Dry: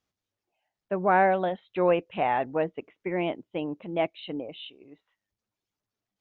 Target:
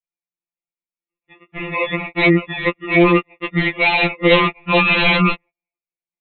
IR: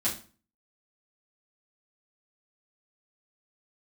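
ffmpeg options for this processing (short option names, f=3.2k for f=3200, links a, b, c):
-filter_complex "[0:a]areverse,agate=range=-33dB:threshold=-47dB:ratio=16:detection=peak,asplit=2[a][b];[b]aeval=exprs='(mod(11.9*val(0)+1,2)-1)/11.9':c=same,volume=-4dB[c];[a][c]amix=inputs=2:normalize=0,acrusher=samples=28:mix=1:aa=0.000001,lowpass=f=2.4k:t=q:w=6.2,aresample=8000,aeval=exprs='0.158*(abs(mod(val(0)/0.158+3,4)-2)-1)':c=same,aresample=44100,alimiter=level_in=17.5dB:limit=-1dB:release=50:level=0:latency=1,afftfilt=real='re*2.83*eq(mod(b,8),0)':imag='im*2.83*eq(mod(b,8),0)':win_size=2048:overlap=0.75,volume=-4dB"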